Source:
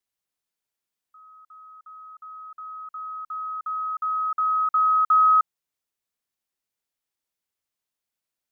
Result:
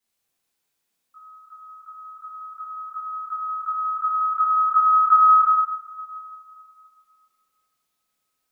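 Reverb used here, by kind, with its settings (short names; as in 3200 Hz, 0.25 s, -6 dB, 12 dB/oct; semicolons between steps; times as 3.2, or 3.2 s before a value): two-slope reverb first 0.87 s, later 2.7 s, from -18 dB, DRR -9 dB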